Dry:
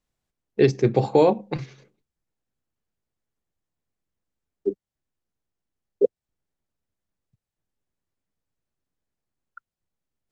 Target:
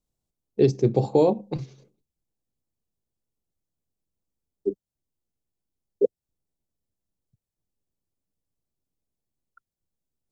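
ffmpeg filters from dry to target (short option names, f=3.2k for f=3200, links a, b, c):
-af "equalizer=f=1.8k:w=0.86:g=-15"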